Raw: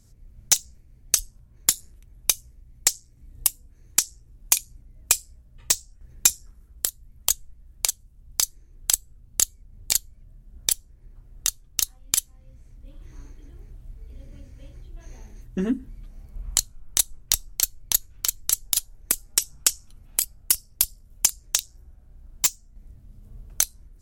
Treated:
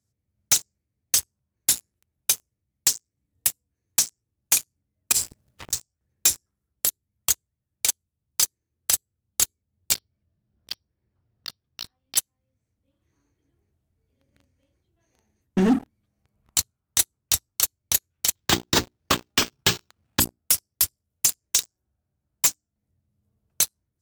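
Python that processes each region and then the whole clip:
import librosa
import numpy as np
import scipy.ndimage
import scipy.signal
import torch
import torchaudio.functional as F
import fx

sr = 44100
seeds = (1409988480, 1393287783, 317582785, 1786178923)

y = fx.chain(x, sr, fx.law_mismatch(coded='mu'),
    fx.low_shelf(hz=67.0, db=-5.0),
    fx.over_compress(threshold_db=-32.0, ratio=-0.5), at=(5.12, 5.73))
y = fx.chain(y, sr, fx.brickwall_lowpass(high_hz=5800.0),
    fx.over_compress(threshold_db=-35.0, ratio=-0.5), at=(9.94, 12.17))
y = fx.chain(y, sr, fx.law_mismatch(coded='mu'),
    fx.resample_bad(factor=4, down='none', up='hold'), at=(18.35, 20.2))
y = scipy.signal.sosfilt(scipy.signal.butter(4, 77.0, 'highpass', fs=sr, output='sos'), y)
y = fx.hum_notches(y, sr, base_hz=60, count=7)
y = fx.leveller(y, sr, passes=5)
y = y * librosa.db_to_amplitude(-9.0)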